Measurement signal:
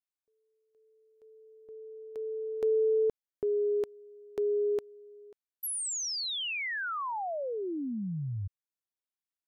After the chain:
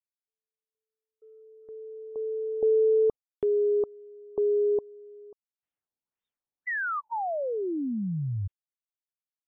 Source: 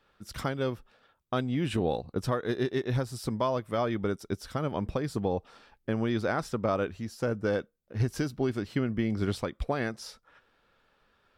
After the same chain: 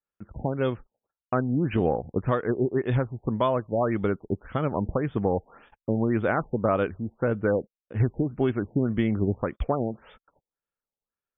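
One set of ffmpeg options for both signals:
-af "agate=range=0.0224:threshold=0.00158:ratio=3:release=35:detection=rms,afftfilt=real='re*lt(b*sr/1024,880*pow(3700/880,0.5+0.5*sin(2*PI*1.8*pts/sr)))':imag='im*lt(b*sr/1024,880*pow(3700/880,0.5+0.5*sin(2*PI*1.8*pts/sr)))':win_size=1024:overlap=0.75,volume=1.68"

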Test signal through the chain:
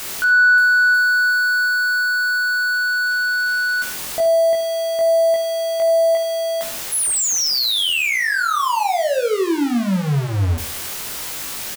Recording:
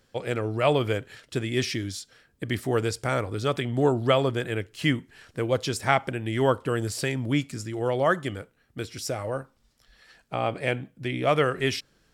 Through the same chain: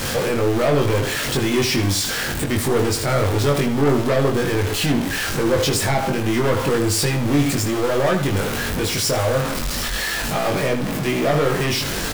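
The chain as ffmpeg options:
-filter_complex "[0:a]aeval=exprs='val(0)+0.5*0.0631*sgn(val(0))':c=same,bandreject=f=60:t=h:w=6,bandreject=f=120:t=h:w=6,acrossover=split=860[s0][s1];[s1]alimiter=limit=0.126:level=0:latency=1:release=255[s2];[s0][s2]amix=inputs=2:normalize=0,asoftclip=type=hard:threshold=0.0891,asplit=2[s3][s4];[s4]adelay=21,volume=0.708[s5];[s3][s5]amix=inputs=2:normalize=0,asplit=2[s6][s7];[s7]adelay=77,lowpass=f=4900:p=1,volume=0.316,asplit=2[s8][s9];[s9]adelay=77,lowpass=f=4900:p=1,volume=0.31,asplit=2[s10][s11];[s11]adelay=77,lowpass=f=4900:p=1,volume=0.31[s12];[s8][s10][s12]amix=inputs=3:normalize=0[s13];[s6][s13]amix=inputs=2:normalize=0,volume=1.58"

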